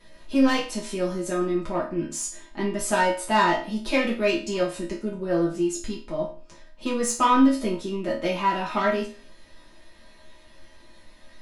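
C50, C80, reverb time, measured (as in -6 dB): 7.0 dB, 12.0 dB, 0.40 s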